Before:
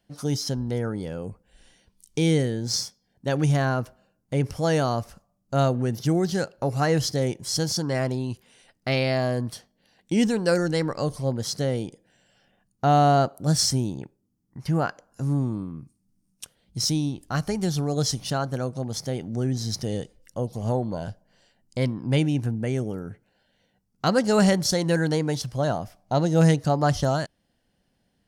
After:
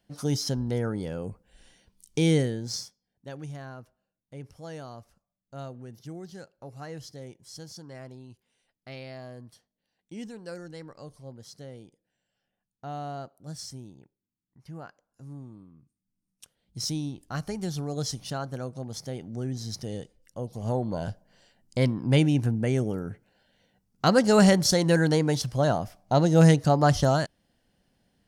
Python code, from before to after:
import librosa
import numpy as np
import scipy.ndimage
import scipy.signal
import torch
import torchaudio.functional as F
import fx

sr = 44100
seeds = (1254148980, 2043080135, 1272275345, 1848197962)

y = fx.gain(x, sr, db=fx.line((2.38, -1.0), (2.83, -9.0), (3.51, -18.0), (15.77, -18.0), (16.84, -6.5), (20.41, -6.5), (21.09, 1.0)))